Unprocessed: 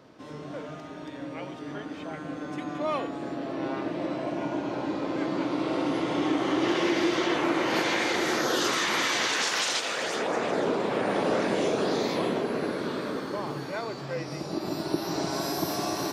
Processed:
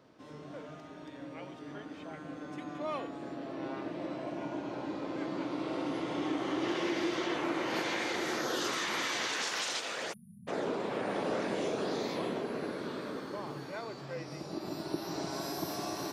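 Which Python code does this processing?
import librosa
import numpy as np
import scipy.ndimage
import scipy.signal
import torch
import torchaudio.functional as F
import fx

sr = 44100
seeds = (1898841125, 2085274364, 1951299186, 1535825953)

y = fx.spec_erase(x, sr, start_s=10.13, length_s=0.35, low_hz=230.0, high_hz=9400.0)
y = y * 10.0 ** (-7.5 / 20.0)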